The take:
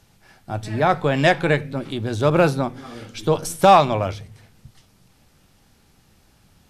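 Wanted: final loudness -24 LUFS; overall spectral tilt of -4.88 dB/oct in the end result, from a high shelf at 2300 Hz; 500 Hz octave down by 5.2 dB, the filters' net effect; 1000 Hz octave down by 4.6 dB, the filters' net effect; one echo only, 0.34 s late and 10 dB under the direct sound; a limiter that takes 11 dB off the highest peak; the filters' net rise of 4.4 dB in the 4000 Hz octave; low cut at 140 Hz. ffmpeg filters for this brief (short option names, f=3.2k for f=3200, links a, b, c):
-af "highpass=140,equalizer=f=500:t=o:g=-5,equalizer=f=1k:t=o:g=-4,highshelf=f=2.3k:g=-4,equalizer=f=4k:t=o:g=9,alimiter=limit=-13dB:level=0:latency=1,aecho=1:1:340:0.316,volume=3dB"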